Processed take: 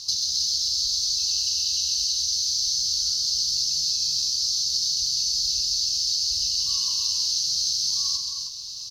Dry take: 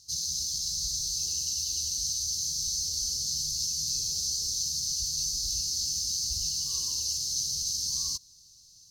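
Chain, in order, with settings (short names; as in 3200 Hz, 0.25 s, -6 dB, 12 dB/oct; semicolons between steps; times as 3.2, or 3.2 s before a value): band shelf 2200 Hz +15 dB 2.9 oct; compressor 16:1, threshold -31 dBFS, peak gain reduction 16 dB; tapped delay 0.131/0.265/0.313 s -7/-9.5/-7 dB; gain +8 dB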